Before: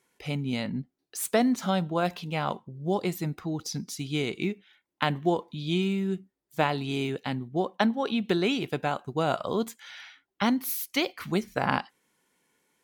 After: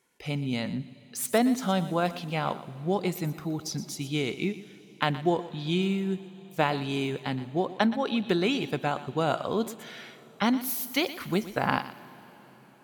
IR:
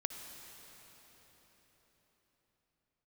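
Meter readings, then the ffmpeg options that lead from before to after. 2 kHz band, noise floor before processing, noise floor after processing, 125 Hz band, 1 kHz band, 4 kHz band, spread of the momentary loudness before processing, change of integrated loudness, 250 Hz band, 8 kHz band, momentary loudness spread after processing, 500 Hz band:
0.0 dB, −83 dBFS, −53 dBFS, 0.0 dB, 0.0 dB, 0.0 dB, 9 LU, 0.0 dB, 0.0 dB, +0.5 dB, 10 LU, 0.0 dB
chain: -filter_complex "[0:a]asplit=2[link_01][link_02];[1:a]atrim=start_sample=2205,highshelf=frequency=4500:gain=6,adelay=120[link_03];[link_02][link_03]afir=irnorm=-1:irlink=0,volume=-15dB[link_04];[link_01][link_04]amix=inputs=2:normalize=0"

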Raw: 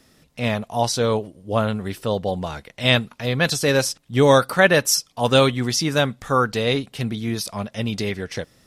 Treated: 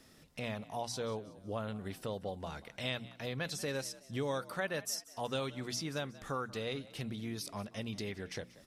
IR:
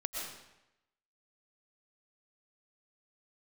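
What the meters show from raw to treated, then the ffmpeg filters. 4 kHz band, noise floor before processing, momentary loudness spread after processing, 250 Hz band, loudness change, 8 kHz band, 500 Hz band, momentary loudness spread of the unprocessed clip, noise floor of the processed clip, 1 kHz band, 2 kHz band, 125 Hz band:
−18.0 dB, −59 dBFS, 6 LU, −17.5 dB, −18.5 dB, −17.5 dB, −19.0 dB, 11 LU, −61 dBFS, −18.5 dB, −19.5 dB, −18.5 dB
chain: -filter_complex "[0:a]bandreject=frequency=60:width_type=h:width=6,bandreject=frequency=120:width_type=h:width=6,bandreject=frequency=180:width_type=h:width=6,bandreject=frequency=240:width_type=h:width=6,acompressor=threshold=-37dB:ratio=2.5,asplit=2[link_01][link_02];[link_02]asplit=3[link_03][link_04][link_05];[link_03]adelay=185,afreqshift=55,volume=-19dB[link_06];[link_04]adelay=370,afreqshift=110,volume=-27dB[link_07];[link_05]adelay=555,afreqshift=165,volume=-34.9dB[link_08];[link_06][link_07][link_08]amix=inputs=3:normalize=0[link_09];[link_01][link_09]amix=inputs=2:normalize=0,volume=-5dB"

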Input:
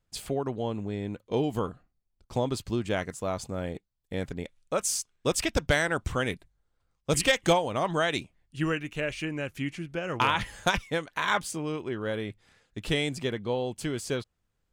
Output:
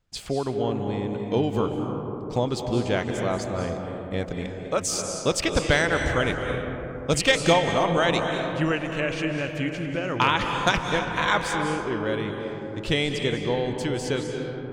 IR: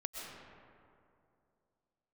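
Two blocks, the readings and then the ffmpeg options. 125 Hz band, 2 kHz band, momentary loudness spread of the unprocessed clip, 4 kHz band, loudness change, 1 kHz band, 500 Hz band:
+5.5 dB, +5.0 dB, 10 LU, +5.0 dB, +4.5 dB, +5.0 dB, +5.0 dB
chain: -filter_complex "[0:a]asplit=2[link_01][link_02];[link_02]highshelf=frequency=5100:gain=7[link_03];[1:a]atrim=start_sample=2205,asetrate=27783,aresample=44100,lowpass=6700[link_04];[link_03][link_04]afir=irnorm=-1:irlink=0,volume=1.5dB[link_05];[link_01][link_05]amix=inputs=2:normalize=0,volume=-3dB"

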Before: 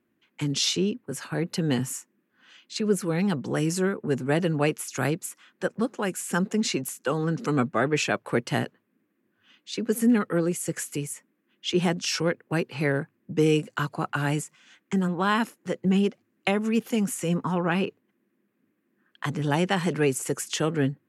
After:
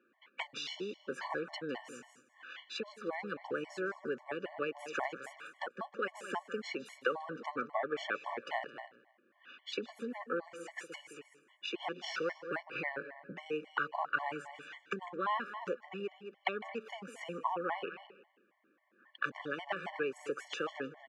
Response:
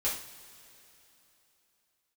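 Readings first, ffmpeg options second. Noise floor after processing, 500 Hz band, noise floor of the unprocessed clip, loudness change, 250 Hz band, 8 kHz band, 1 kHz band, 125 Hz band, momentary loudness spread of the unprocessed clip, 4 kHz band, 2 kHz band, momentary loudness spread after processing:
−72 dBFS, −11.5 dB, −74 dBFS, −13.0 dB, −20.0 dB, −24.0 dB, −6.5 dB, −27.5 dB, 9 LU, −12.5 dB, −7.0 dB, 12 LU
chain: -filter_complex "[0:a]asplit=2[link_01][link_02];[link_02]aecho=0:1:216:0.112[link_03];[link_01][link_03]amix=inputs=2:normalize=0,acompressor=threshold=-36dB:ratio=8,highpass=580,lowpass=2200,asplit=2[link_04][link_05];[link_05]aecho=0:1:155|310|465:0.15|0.0509|0.0173[link_06];[link_04][link_06]amix=inputs=2:normalize=0,afftfilt=real='re*gt(sin(2*PI*3.7*pts/sr)*(1-2*mod(floor(b*sr/1024/580),2)),0)':imag='im*gt(sin(2*PI*3.7*pts/sr)*(1-2*mod(floor(b*sr/1024/580),2)),0)':win_size=1024:overlap=0.75,volume=11dB"

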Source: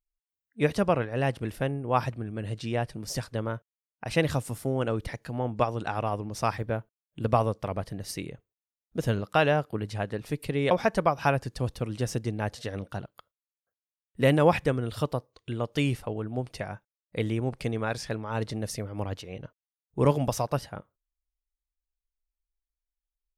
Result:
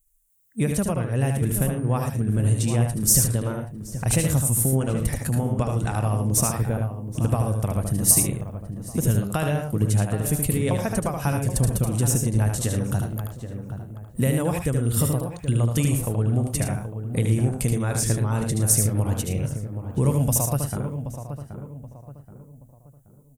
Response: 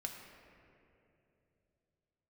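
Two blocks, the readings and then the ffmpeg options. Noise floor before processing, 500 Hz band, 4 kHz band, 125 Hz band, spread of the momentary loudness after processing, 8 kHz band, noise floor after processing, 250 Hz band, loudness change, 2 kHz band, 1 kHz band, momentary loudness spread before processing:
below −85 dBFS, −1.0 dB, +3.0 dB, +10.0 dB, 13 LU, +20.5 dB, −50 dBFS, +6.0 dB, +6.0 dB, −2.0 dB, −2.5 dB, 13 LU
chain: -filter_complex "[0:a]highshelf=frequency=9800:gain=-11.5,acompressor=threshold=-36dB:ratio=3,asplit=2[link_01][link_02];[link_02]aecho=0:1:75.8|110.8:0.562|0.282[link_03];[link_01][link_03]amix=inputs=2:normalize=0,aexciter=amount=9.4:drive=6.9:freq=7000,bass=frequency=250:gain=11,treble=frequency=4000:gain=5,asplit=2[link_04][link_05];[link_05]adelay=777,lowpass=frequency=1400:poles=1,volume=-9dB,asplit=2[link_06][link_07];[link_07]adelay=777,lowpass=frequency=1400:poles=1,volume=0.39,asplit=2[link_08][link_09];[link_09]adelay=777,lowpass=frequency=1400:poles=1,volume=0.39,asplit=2[link_10][link_11];[link_11]adelay=777,lowpass=frequency=1400:poles=1,volume=0.39[link_12];[link_06][link_08][link_10][link_12]amix=inputs=4:normalize=0[link_13];[link_04][link_13]amix=inputs=2:normalize=0,volume=6.5dB"

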